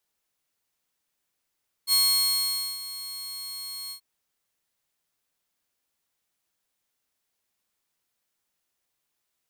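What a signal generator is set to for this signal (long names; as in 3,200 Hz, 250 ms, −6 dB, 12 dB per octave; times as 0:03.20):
note with an ADSR envelope saw 4,300 Hz, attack 57 ms, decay 853 ms, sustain −16.5 dB, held 2.04 s, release 92 ms −15.5 dBFS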